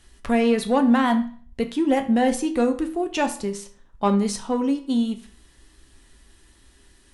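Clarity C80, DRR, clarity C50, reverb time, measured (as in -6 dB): 17.0 dB, 6.0 dB, 12.5 dB, 0.45 s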